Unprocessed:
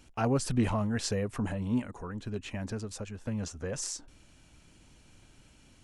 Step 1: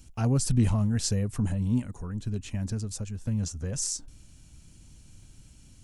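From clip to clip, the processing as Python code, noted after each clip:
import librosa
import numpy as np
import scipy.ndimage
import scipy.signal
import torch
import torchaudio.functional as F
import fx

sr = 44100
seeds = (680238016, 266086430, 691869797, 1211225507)

y = fx.bass_treble(x, sr, bass_db=14, treble_db=13)
y = y * librosa.db_to_amplitude(-5.5)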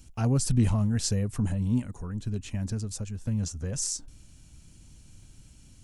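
y = x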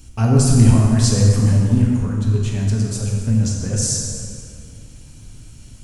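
y = fx.rev_plate(x, sr, seeds[0], rt60_s=2.4, hf_ratio=0.65, predelay_ms=0, drr_db=-2.5)
y = y * librosa.db_to_amplitude(7.0)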